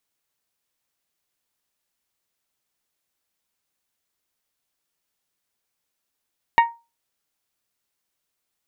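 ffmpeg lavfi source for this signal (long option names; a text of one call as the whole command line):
ffmpeg -f lavfi -i "aevalsrc='0.398*pow(10,-3*t/0.27)*sin(2*PI*931*t)+0.188*pow(10,-3*t/0.166)*sin(2*PI*1862*t)+0.0891*pow(10,-3*t/0.146)*sin(2*PI*2234.4*t)+0.0422*pow(10,-3*t/0.125)*sin(2*PI*2793*t)+0.02*pow(10,-3*t/0.102)*sin(2*PI*3724*t)':duration=0.89:sample_rate=44100" out.wav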